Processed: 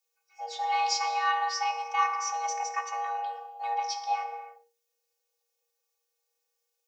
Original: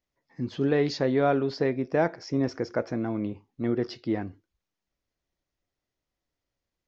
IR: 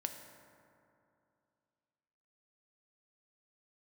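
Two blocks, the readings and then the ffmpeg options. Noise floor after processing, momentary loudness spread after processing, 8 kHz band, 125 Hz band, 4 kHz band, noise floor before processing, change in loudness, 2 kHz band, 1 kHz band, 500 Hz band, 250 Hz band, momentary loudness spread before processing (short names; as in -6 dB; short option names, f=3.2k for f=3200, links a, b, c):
-81 dBFS, 12 LU, n/a, under -40 dB, +6.0 dB, under -85 dBFS, -2.0 dB, +2.5 dB, +9.5 dB, -17.5 dB, under -40 dB, 9 LU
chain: -filter_complex "[1:a]atrim=start_sample=2205,afade=t=out:st=0.38:d=0.01,atrim=end_sample=17199[a];[0:a][a]afir=irnorm=-1:irlink=0,afftfilt=real='hypot(re,im)*cos(PI*b)':imag='0':win_size=512:overlap=0.75,crystalizer=i=5:c=0,afreqshift=470"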